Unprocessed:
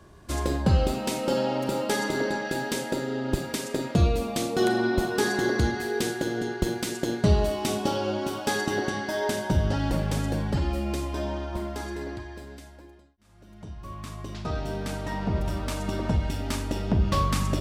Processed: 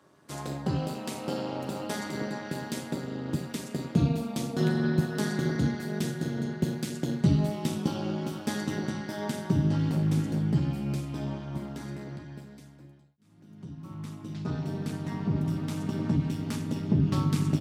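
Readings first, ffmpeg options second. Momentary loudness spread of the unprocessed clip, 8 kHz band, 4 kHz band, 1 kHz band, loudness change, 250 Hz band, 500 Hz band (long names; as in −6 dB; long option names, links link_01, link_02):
11 LU, −7.0 dB, −7.0 dB, −8.5 dB, −3.0 dB, 0.0 dB, −8.0 dB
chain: -filter_complex "[0:a]tremolo=f=210:d=0.919,highpass=frequency=140:width=0.5412,highpass=frequency=140:width=1.3066,asubboost=boost=7:cutoff=200,asplit=2[link_01][link_02];[link_02]adelay=13,volume=-9dB[link_03];[link_01][link_03]amix=inputs=2:normalize=0,volume=-3.5dB"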